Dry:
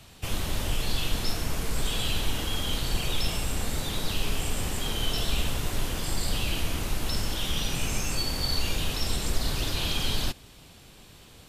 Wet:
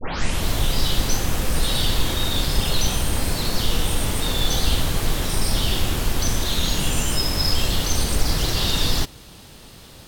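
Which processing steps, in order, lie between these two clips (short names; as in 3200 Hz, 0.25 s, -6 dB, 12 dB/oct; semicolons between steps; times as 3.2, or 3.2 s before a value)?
tape start at the beginning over 0.52 s; varispeed +14%; gain +7 dB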